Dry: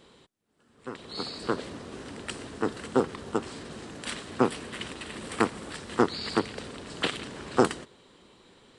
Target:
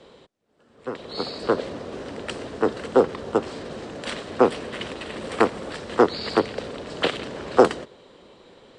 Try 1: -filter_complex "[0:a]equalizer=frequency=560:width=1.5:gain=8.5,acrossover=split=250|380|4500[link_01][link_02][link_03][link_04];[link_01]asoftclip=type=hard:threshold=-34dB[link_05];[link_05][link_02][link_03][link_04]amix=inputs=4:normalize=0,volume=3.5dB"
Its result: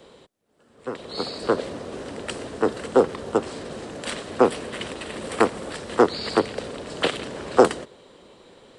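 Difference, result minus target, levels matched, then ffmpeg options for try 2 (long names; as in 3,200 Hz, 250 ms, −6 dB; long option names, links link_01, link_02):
8,000 Hz band +5.5 dB
-filter_complex "[0:a]lowpass=6300,equalizer=frequency=560:width=1.5:gain=8.5,acrossover=split=250|380|4500[link_01][link_02][link_03][link_04];[link_01]asoftclip=type=hard:threshold=-34dB[link_05];[link_05][link_02][link_03][link_04]amix=inputs=4:normalize=0,volume=3.5dB"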